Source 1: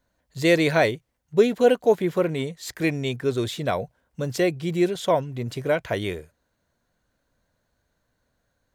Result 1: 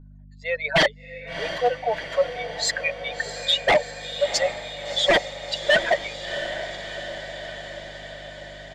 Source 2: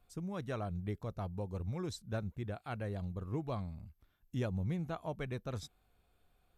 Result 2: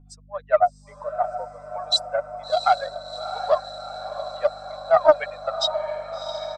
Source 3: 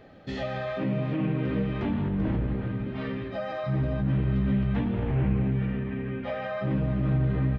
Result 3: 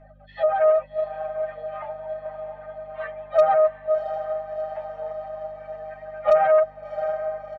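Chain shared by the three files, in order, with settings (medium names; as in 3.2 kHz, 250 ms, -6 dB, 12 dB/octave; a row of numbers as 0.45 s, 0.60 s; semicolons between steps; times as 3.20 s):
spectral contrast enhancement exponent 2.1; reverb removal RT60 0.94 s; steep high-pass 600 Hz 72 dB/octave; level rider gain up to 10.5 dB; hum 50 Hz, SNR 25 dB; comb 6.6 ms, depth 47%; wavefolder -15.5 dBFS; distance through air 58 m; echo that smears into a reverb 695 ms, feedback 68%, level -10 dB; loudspeaker Doppler distortion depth 0.15 ms; normalise loudness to -24 LUFS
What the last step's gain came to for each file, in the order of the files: +4.5 dB, +18.0 dB, +6.5 dB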